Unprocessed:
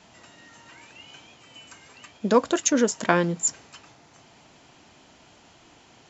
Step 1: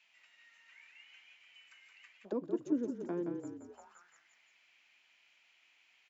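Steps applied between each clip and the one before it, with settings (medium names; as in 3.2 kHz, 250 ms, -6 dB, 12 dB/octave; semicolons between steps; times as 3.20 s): treble shelf 3.7 kHz +9 dB; frequency-shifting echo 172 ms, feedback 52%, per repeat -34 Hz, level -6 dB; auto-wah 310–2500 Hz, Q 3.9, down, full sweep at -18 dBFS; trim -8 dB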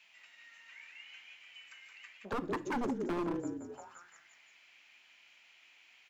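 wavefolder -34.5 dBFS; on a send at -13 dB: reverberation RT60 0.45 s, pre-delay 4 ms; on the sum: trim +6 dB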